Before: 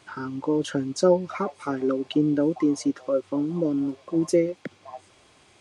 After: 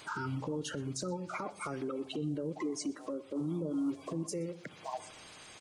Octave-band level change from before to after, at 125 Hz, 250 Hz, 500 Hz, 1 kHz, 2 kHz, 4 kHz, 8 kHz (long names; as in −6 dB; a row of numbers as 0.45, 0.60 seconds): −6.5, −12.5, −15.0, −7.5, −5.0, −7.0, −4.5 decibels